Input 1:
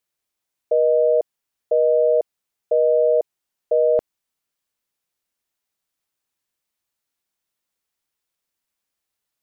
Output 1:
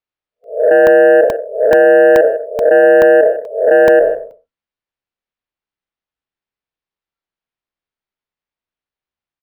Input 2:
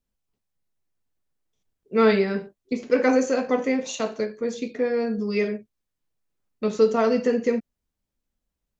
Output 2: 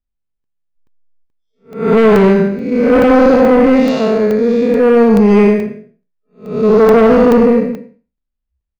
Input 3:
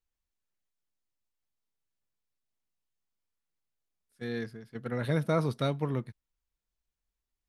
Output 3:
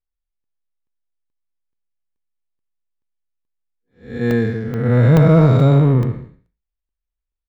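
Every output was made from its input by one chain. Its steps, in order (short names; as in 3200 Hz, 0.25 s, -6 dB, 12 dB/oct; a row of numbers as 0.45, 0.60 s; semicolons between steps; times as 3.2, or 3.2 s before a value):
time blur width 0.257 s; spectral noise reduction 24 dB; harmonic-percussive split harmonic +9 dB; low shelf 70 Hz +11 dB; limiter -8 dBFS; sine folder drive 4 dB, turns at -8 dBFS; sample-and-hold 4×; air absorption 180 m; echo 0.156 s -16.5 dB; crackling interface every 0.43 s, samples 64, zero, from 0.44; normalise peaks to -3 dBFS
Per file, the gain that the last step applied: +4.0, +4.0, +4.5 dB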